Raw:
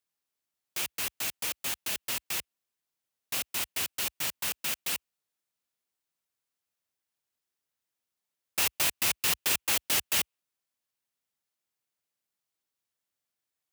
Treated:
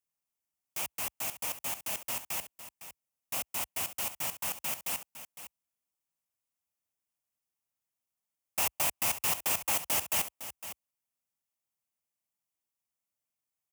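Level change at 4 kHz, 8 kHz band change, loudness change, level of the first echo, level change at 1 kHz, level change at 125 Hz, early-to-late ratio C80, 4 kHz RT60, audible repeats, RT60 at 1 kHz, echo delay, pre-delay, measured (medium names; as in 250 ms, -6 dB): -7.0 dB, -2.5 dB, -2.5 dB, -12.5 dB, +2.0 dB, -1.5 dB, no reverb, no reverb, 1, no reverb, 508 ms, no reverb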